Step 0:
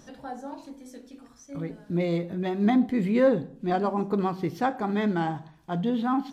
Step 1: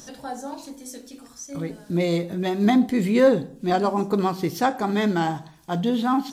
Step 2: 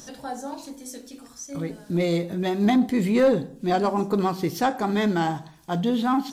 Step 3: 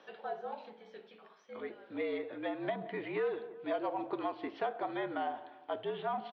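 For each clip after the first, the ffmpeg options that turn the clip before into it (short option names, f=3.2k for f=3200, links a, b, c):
-af "bass=f=250:g=-2,treble=f=4k:g=12,volume=4.5dB"
-af "asoftclip=type=tanh:threshold=-11dB"
-filter_complex "[0:a]highpass=f=450:t=q:w=0.5412,highpass=f=450:t=q:w=1.307,lowpass=f=3.3k:t=q:w=0.5176,lowpass=f=3.3k:t=q:w=0.7071,lowpass=f=3.3k:t=q:w=1.932,afreqshift=-61,asplit=2[a][b];[b]adelay=173,lowpass=f=1.6k:p=1,volume=-20dB,asplit=2[c][d];[d]adelay=173,lowpass=f=1.6k:p=1,volume=0.52,asplit=2[e][f];[f]adelay=173,lowpass=f=1.6k:p=1,volume=0.52,asplit=2[g][h];[h]adelay=173,lowpass=f=1.6k:p=1,volume=0.52[i];[a][c][e][g][i]amix=inputs=5:normalize=0,acrossover=split=850|2500[j][k][l];[j]acompressor=threshold=-29dB:ratio=4[m];[k]acompressor=threshold=-40dB:ratio=4[n];[l]acompressor=threshold=-51dB:ratio=4[o];[m][n][o]amix=inputs=3:normalize=0,volume=-4.5dB"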